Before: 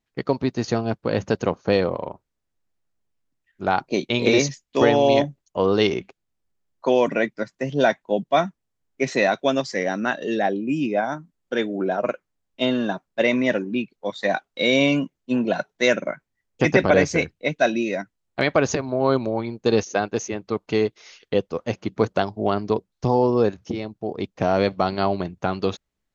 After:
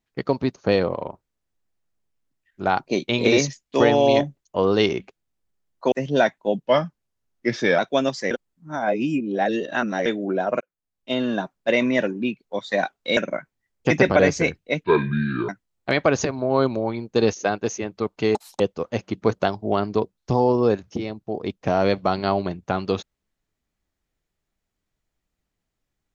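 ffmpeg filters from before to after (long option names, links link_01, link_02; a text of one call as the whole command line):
ffmpeg -i in.wav -filter_complex "[0:a]asplit=13[link_01][link_02][link_03][link_04][link_05][link_06][link_07][link_08][link_09][link_10][link_11][link_12][link_13];[link_01]atrim=end=0.562[link_14];[link_02]atrim=start=1.568:end=6.932[link_15];[link_03]atrim=start=7.558:end=8.274[link_16];[link_04]atrim=start=8.27:end=9.3,asetpts=PTS-STARTPTS,asetrate=39249,aresample=44100,atrim=end_sample=51037,asetpts=PTS-STARTPTS[link_17];[link_05]atrim=start=9.296:end=9.822[link_18];[link_06]atrim=start=9.818:end=11.572,asetpts=PTS-STARTPTS,areverse[link_19];[link_07]atrim=start=11.568:end=12.12,asetpts=PTS-STARTPTS,afade=type=out:start_time=0.548:duration=0.004:curve=hsin[link_20];[link_08]atrim=start=12.12:end=14.682,asetpts=PTS-STARTPTS,afade=type=in:duration=0.74[link_21];[link_09]atrim=start=15.908:end=17.584[link_22];[link_10]atrim=start=17.58:end=17.99,asetpts=PTS-STARTPTS,asetrate=27783,aresample=44100[link_23];[link_11]atrim=start=17.986:end=20.854[link_24];[link_12]atrim=start=20.85:end=21.34,asetpts=PTS-STARTPTS,asetrate=86877,aresample=44100,atrim=end_sample=10969,asetpts=PTS-STARTPTS[link_25];[link_13]atrim=start=21.336[link_26];[link_14][link_15]acrossfade=duration=0.004:curve1=hsin:curve2=hsin[link_27];[link_27][link_16]acrossfade=duration=0.004:curve1=hsin:curve2=hsin[link_28];[link_28][link_17]acrossfade=duration=0.004:curve1=hsin:curve2=hsin[link_29];[link_29][link_18]acrossfade=duration=0.004:curve1=hsin:curve2=hsin[link_30];[link_30][link_19]acrossfade=duration=0.004:curve1=hsin:curve2=hsin[link_31];[link_20][link_21]concat=n=2:v=0:a=1[link_32];[link_31][link_32]acrossfade=duration=0.004:curve1=hsin:curve2=hsin[link_33];[link_33][link_22]acrossfade=duration=0.004:curve1=hsin:curve2=hsin[link_34];[link_34][link_23]acrossfade=duration=0.004:curve1=hsin:curve2=hsin[link_35];[link_35][link_24]acrossfade=duration=0.004:curve1=hsin:curve2=hsin[link_36];[link_36][link_25]acrossfade=duration=0.004:curve1=hsin:curve2=hsin[link_37];[link_37][link_26]acrossfade=duration=0.004:curve1=hsin:curve2=hsin" out.wav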